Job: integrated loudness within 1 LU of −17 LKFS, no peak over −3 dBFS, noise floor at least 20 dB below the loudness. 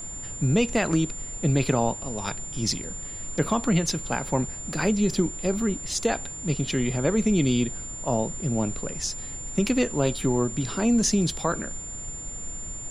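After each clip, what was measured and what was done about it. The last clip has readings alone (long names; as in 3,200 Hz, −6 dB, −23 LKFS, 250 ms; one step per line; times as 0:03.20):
interfering tone 7,200 Hz; level of the tone −35 dBFS; background noise floor −37 dBFS; target noise floor −46 dBFS; integrated loudness −26.0 LKFS; sample peak −10.5 dBFS; target loudness −17.0 LKFS
→ notch filter 7,200 Hz, Q 30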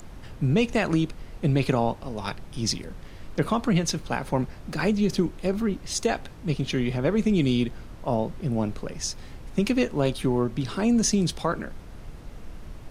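interfering tone none found; background noise floor −43 dBFS; target noise floor −46 dBFS
→ noise reduction from a noise print 6 dB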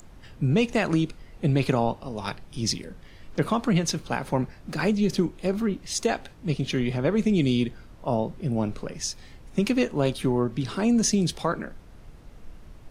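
background noise floor −48 dBFS; integrated loudness −26.0 LKFS; sample peak −10.5 dBFS; target loudness −17.0 LKFS
→ level +9 dB
brickwall limiter −3 dBFS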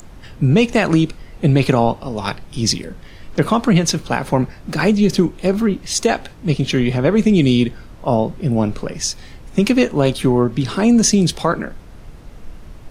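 integrated loudness −17.5 LKFS; sample peak −3.0 dBFS; background noise floor −39 dBFS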